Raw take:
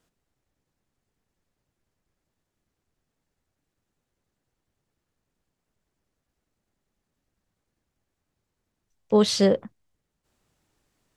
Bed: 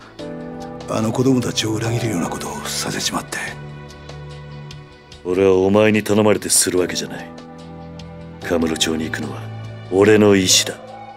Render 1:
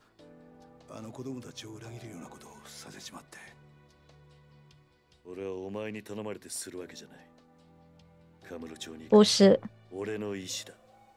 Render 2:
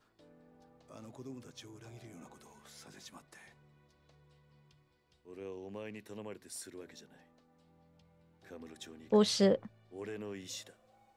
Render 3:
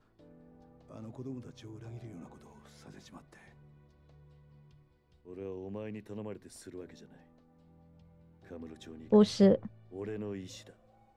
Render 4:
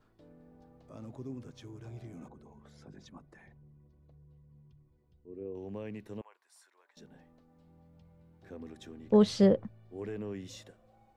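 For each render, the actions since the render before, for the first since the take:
add bed -24 dB
trim -7.5 dB
tilt EQ -2.5 dB/octave
2.28–5.55 s: resonances exaggerated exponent 1.5; 6.21–6.97 s: ladder high-pass 820 Hz, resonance 50%

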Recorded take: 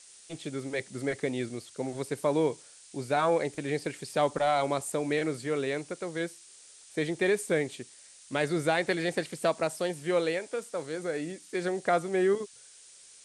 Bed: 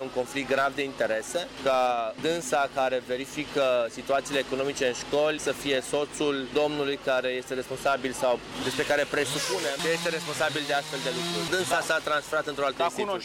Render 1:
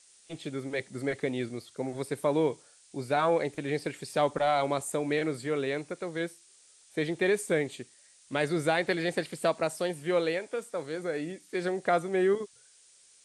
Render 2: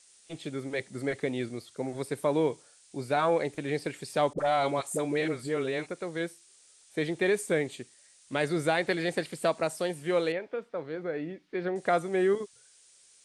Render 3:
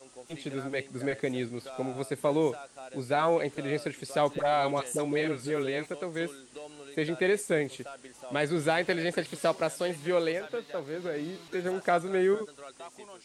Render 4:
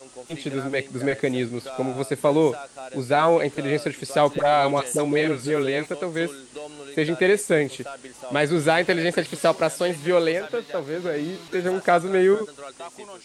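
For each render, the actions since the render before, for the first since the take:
noise print and reduce 6 dB
4.33–5.87 s: phase dispersion highs, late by 51 ms, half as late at 660 Hz; 10.32–11.76 s: distance through air 310 m
add bed -19.5 dB
trim +7.5 dB

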